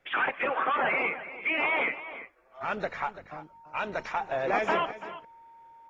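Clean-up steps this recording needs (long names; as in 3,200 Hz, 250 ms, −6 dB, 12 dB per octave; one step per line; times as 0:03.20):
notch filter 920 Hz, Q 30
echo removal 338 ms −14 dB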